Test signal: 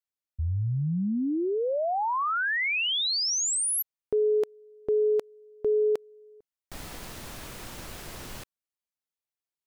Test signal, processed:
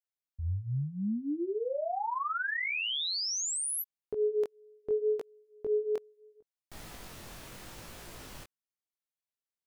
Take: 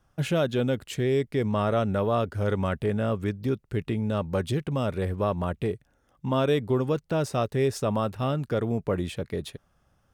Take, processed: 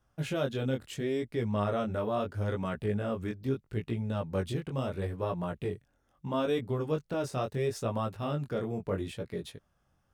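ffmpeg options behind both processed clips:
-af "flanger=delay=17:depth=6.2:speed=0.75,volume=-3dB"

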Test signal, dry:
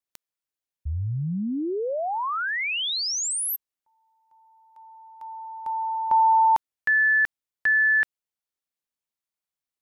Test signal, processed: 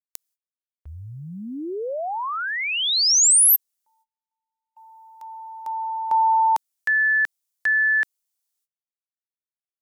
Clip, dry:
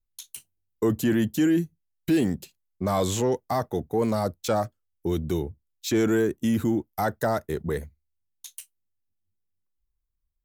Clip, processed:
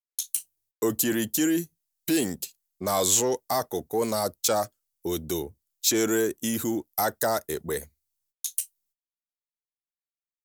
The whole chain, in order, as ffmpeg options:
-af "agate=range=-30dB:threshold=-50dB:ratio=16:release=340:detection=rms,bass=f=250:g=-10,treble=f=4k:g=13"

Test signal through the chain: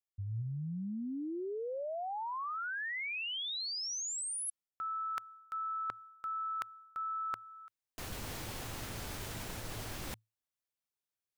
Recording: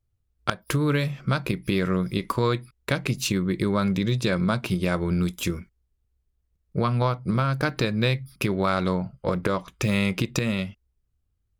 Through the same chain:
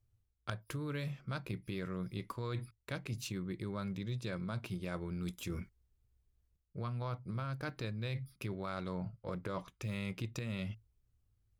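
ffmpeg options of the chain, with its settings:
-af "equalizer=f=110:w=6.7:g=10,areverse,acompressor=threshold=-36dB:ratio=5,areverse,volume=-2.5dB"

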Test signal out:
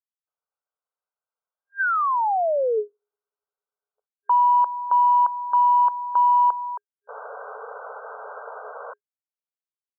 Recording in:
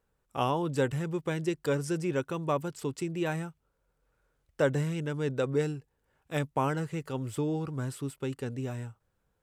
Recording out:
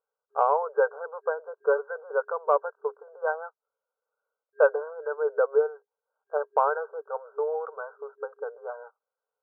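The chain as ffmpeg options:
-af "agate=range=-15dB:threshold=-39dB:ratio=16:detection=peak,afftfilt=real='re*between(b*sr/4096,410,1600)':imag='im*between(b*sr/4096,410,1600)':win_size=4096:overlap=0.75,acontrast=52,volume=1.5dB"

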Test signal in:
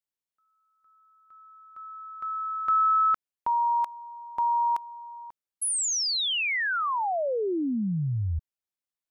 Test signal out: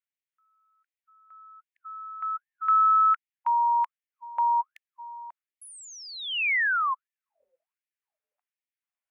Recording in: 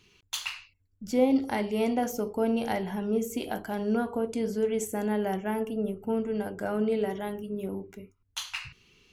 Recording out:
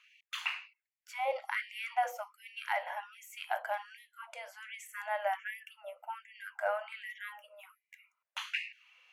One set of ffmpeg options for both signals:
-filter_complex "[0:a]highshelf=f=3.2k:t=q:w=1.5:g=-9.5,acrossover=split=4100[a][b];[b]acompressor=threshold=-48dB:ratio=4:attack=1:release=60[c];[a][c]amix=inputs=2:normalize=0,afftfilt=real='re*gte(b*sr/1024,480*pow(1800/480,0.5+0.5*sin(2*PI*1.3*pts/sr)))':imag='im*gte(b*sr/1024,480*pow(1800/480,0.5+0.5*sin(2*PI*1.3*pts/sr)))':win_size=1024:overlap=0.75,volume=1dB"

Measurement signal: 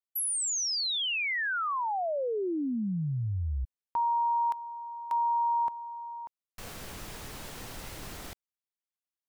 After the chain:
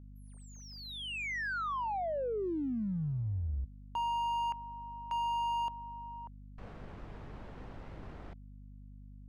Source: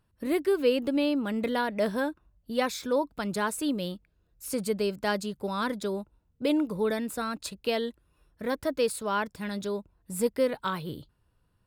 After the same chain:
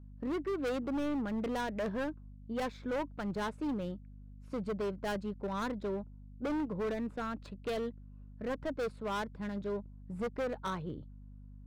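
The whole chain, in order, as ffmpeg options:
-af "adynamicsmooth=sensitivity=2:basefreq=1.4k,asoftclip=type=hard:threshold=-28dB,aeval=exprs='val(0)+0.00501*(sin(2*PI*50*n/s)+sin(2*PI*2*50*n/s)/2+sin(2*PI*3*50*n/s)/3+sin(2*PI*4*50*n/s)/4+sin(2*PI*5*50*n/s)/5)':c=same,volume=-3.5dB"

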